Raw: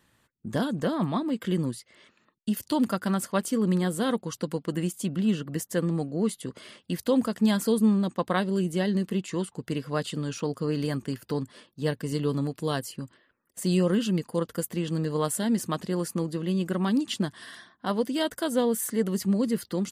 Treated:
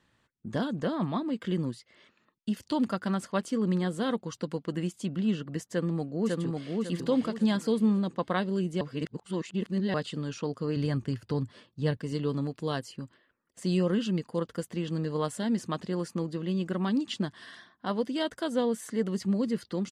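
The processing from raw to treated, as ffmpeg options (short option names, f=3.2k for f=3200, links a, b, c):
-filter_complex "[0:a]asplit=2[a][b];[b]afade=t=in:st=5.69:d=0.01,afade=t=out:st=6.78:d=0.01,aecho=0:1:550|1100|1650|2200|2750:0.794328|0.278015|0.0973052|0.0340568|0.0119199[c];[a][c]amix=inputs=2:normalize=0,asettb=1/sr,asplit=3[d][e][f];[d]atrim=end=10.764[g];[e]atrim=start=10.76:end=11.97,asetpts=PTS-STARTPTS,afade=t=in:d=0.004:c=qsin,afade=t=out:st=1.206:d=0.004:c=qsin,equalizer=f=100:w=1.5:g=12[h];[f]atrim=start=11.966[i];[g][h]acrossfade=d=0.004:c1=hsin:c2=qsin[j];[j][i]acrossfade=d=0.004:c1=qsin:c2=hsin,asplit=3[k][l][m];[k]atrim=end=8.812[n];[l]atrim=start=8.808:end=9.942,asetpts=PTS-STARTPTS,areverse[o];[m]atrim=start=9.938[p];[n][o]acrossfade=d=0.004:c1=hsin:c2=hsin[q];[q][p]acrossfade=d=0.004:c1=hsin:c2=hsin,lowpass=6k,volume=-3dB"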